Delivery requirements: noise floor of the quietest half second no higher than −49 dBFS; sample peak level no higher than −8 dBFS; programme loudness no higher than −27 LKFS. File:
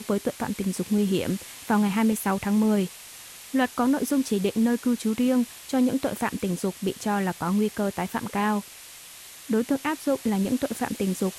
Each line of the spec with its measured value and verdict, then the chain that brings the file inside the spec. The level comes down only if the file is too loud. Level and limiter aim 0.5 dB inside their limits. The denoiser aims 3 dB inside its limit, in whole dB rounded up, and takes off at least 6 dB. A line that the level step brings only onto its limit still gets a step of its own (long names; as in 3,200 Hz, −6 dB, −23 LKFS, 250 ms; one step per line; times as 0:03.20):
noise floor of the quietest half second −45 dBFS: out of spec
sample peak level −12.0 dBFS: in spec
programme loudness −26.0 LKFS: out of spec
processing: broadband denoise 6 dB, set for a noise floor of −45 dBFS
level −1.5 dB